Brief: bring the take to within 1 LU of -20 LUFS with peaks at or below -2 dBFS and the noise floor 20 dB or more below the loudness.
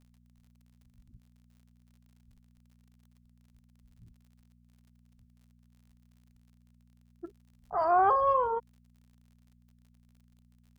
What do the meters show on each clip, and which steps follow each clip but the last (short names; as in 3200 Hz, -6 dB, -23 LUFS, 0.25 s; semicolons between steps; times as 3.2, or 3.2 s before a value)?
ticks 46/s; hum 60 Hz; harmonics up to 240 Hz; hum level -61 dBFS; loudness -27.0 LUFS; peak -15.0 dBFS; loudness target -20.0 LUFS
-> de-click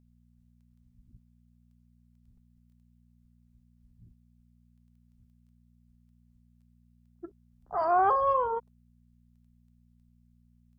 ticks 0.093/s; hum 60 Hz; harmonics up to 240 Hz; hum level -61 dBFS
-> de-hum 60 Hz, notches 4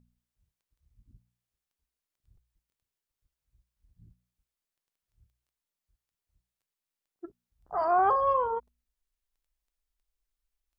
hum none; loudness -27.0 LUFS; peak -15.0 dBFS; loudness target -20.0 LUFS
-> gain +7 dB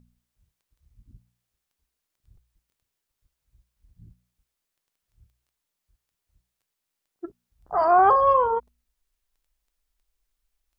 loudness -20.0 LUFS; peak -8.0 dBFS; noise floor -83 dBFS